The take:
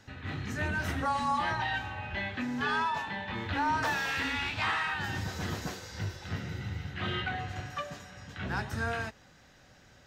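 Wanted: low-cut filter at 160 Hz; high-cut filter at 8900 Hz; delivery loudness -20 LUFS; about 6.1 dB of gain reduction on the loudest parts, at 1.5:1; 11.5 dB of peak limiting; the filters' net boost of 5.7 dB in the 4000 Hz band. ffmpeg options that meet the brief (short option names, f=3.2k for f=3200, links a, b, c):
-af "highpass=160,lowpass=8.9k,equalizer=f=4k:t=o:g=7.5,acompressor=threshold=-43dB:ratio=1.5,volume=22.5dB,alimiter=limit=-12.5dB:level=0:latency=1"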